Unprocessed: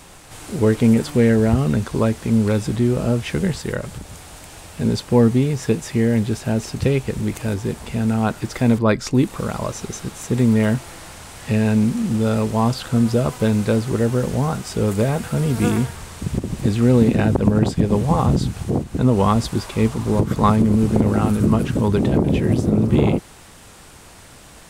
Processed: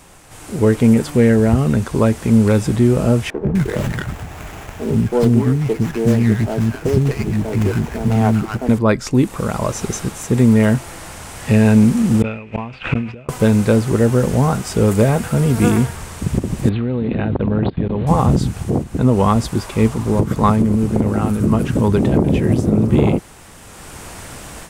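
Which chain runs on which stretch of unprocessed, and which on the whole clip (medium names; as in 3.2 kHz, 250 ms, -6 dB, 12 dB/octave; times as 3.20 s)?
3.30–8.69 s: band-stop 530 Hz, Q 7.3 + three bands offset in time mids, lows, highs 110/250 ms, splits 290/1100 Hz + sliding maximum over 9 samples
12.22–13.29 s: inverted gate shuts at -12 dBFS, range -34 dB + resonant low-pass 2.5 kHz, resonance Q 9 + decay stretcher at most 83 dB/s
16.69–18.07 s: steep low-pass 4.2 kHz 96 dB/octave + level held to a coarse grid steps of 23 dB
whole clip: peaking EQ 4 kHz -4 dB 0.82 oct; level rider; trim -1 dB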